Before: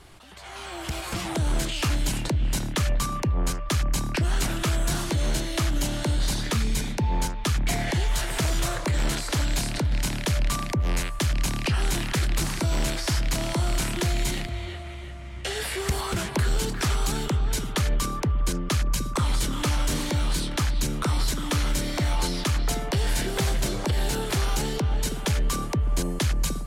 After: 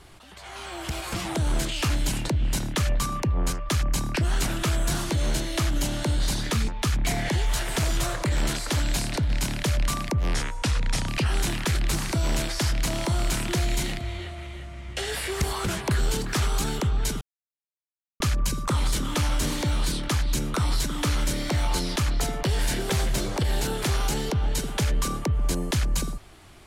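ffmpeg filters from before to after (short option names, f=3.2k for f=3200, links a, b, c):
-filter_complex "[0:a]asplit=6[a][b][c][d][e][f];[a]atrim=end=6.682[g];[b]atrim=start=7.298:end=10.964[h];[c]atrim=start=10.96:end=11.56,asetpts=PTS-STARTPTS,asetrate=35721,aresample=44100[i];[d]atrim=start=11.556:end=17.69,asetpts=PTS-STARTPTS,afade=t=out:st=6.13:d=0.004:c=hsin[j];[e]atrim=start=17.69:end=18.68,asetpts=PTS-STARTPTS,volume=0[k];[f]atrim=start=18.68,asetpts=PTS-STARTPTS,afade=t=in:d=0.004:c=hsin[l];[g][h]acrossfade=d=0.004:c1=hsin:c2=hsin[m];[m][i]acrossfade=d=0.004:c1=hsin:c2=hsin[n];[j][k][l]concat=n=3:v=0:a=1[o];[n][o]acrossfade=d=0.004:c1=hsin:c2=hsin"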